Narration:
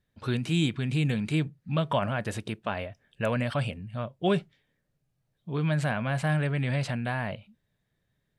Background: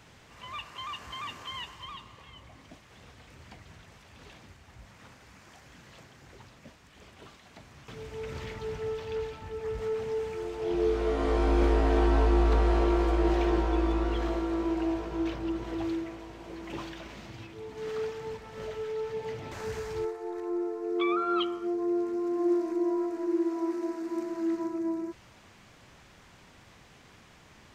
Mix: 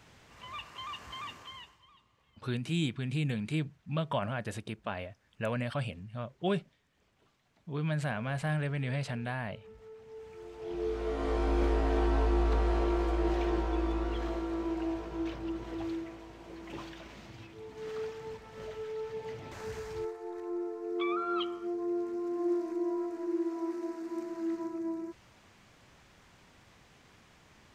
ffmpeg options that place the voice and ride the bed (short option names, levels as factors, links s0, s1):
-filter_complex "[0:a]adelay=2200,volume=0.531[s0];[1:a]volume=3.76,afade=t=out:st=1.2:d=0.62:silence=0.158489,afade=t=in:st=10.03:d=1.26:silence=0.188365[s1];[s0][s1]amix=inputs=2:normalize=0"